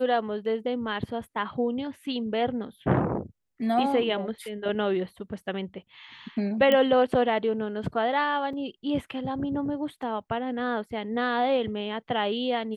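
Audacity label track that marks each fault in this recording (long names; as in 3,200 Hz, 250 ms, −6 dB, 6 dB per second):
6.720000	6.720000	click −12 dBFS
8.530000	8.530000	drop-out 3.6 ms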